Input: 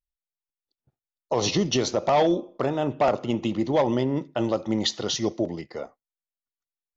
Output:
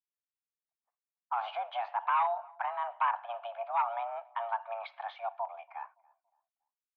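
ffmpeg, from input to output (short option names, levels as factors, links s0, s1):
-filter_complex "[0:a]highpass=f=350:t=q:w=0.5412,highpass=f=350:t=q:w=1.307,lowpass=f=2400:t=q:w=0.5176,lowpass=f=2400:t=q:w=0.7071,lowpass=f=2400:t=q:w=1.932,afreqshift=350,asplit=2[s0][s1];[s1]adelay=283,lowpass=f=990:p=1,volume=0.0668,asplit=2[s2][s3];[s3]adelay=283,lowpass=f=990:p=1,volume=0.41,asplit=2[s4][s5];[s5]adelay=283,lowpass=f=990:p=1,volume=0.41[s6];[s2][s4][s6]amix=inputs=3:normalize=0[s7];[s0][s7]amix=inputs=2:normalize=0,volume=0.422"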